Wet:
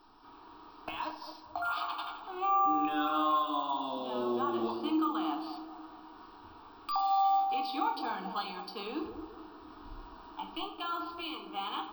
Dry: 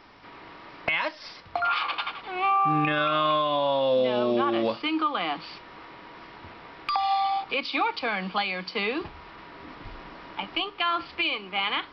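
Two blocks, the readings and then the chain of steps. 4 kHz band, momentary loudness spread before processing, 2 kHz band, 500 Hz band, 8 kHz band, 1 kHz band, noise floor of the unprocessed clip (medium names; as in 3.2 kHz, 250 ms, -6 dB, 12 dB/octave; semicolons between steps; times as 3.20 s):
-11.5 dB, 21 LU, -16.0 dB, -12.0 dB, no reading, -4.0 dB, -47 dBFS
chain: static phaser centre 550 Hz, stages 6; feedback echo behind a band-pass 217 ms, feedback 46%, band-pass 500 Hz, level -7 dB; careless resampling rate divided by 2×, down none, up hold; simulated room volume 110 m³, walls mixed, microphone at 0.56 m; trim -7 dB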